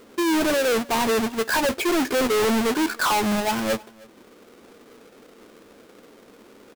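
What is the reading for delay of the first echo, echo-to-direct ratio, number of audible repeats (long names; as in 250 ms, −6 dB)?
312 ms, −24.0 dB, 1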